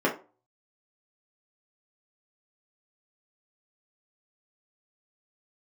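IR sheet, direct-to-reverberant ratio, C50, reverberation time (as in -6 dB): -5.0 dB, 10.5 dB, 0.35 s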